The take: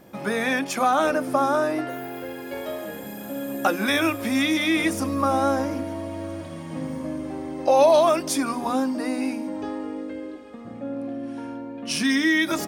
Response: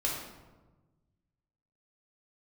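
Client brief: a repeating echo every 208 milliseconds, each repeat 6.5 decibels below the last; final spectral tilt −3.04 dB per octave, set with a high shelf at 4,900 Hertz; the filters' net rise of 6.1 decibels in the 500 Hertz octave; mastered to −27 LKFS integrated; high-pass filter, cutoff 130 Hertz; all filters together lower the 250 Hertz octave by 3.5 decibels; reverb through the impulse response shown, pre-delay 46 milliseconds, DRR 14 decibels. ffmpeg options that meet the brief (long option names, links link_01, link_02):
-filter_complex "[0:a]highpass=130,equalizer=frequency=250:width_type=o:gain=-7.5,equalizer=frequency=500:width_type=o:gain=9,highshelf=frequency=4900:gain=3,aecho=1:1:208|416|624|832|1040|1248:0.473|0.222|0.105|0.0491|0.0231|0.0109,asplit=2[link_01][link_02];[1:a]atrim=start_sample=2205,adelay=46[link_03];[link_02][link_03]afir=irnorm=-1:irlink=0,volume=-20.5dB[link_04];[link_01][link_04]amix=inputs=2:normalize=0,volume=-8dB"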